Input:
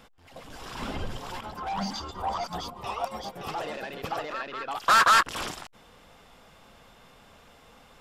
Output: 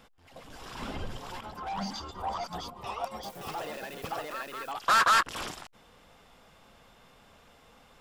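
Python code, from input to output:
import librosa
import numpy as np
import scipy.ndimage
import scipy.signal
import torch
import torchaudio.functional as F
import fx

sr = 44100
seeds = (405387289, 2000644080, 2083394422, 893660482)

y = fx.crossing_spikes(x, sr, level_db=-38.0, at=(3.23, 4.72))
y = F.gain(torch.from_numpy(y), -3.5).numpy()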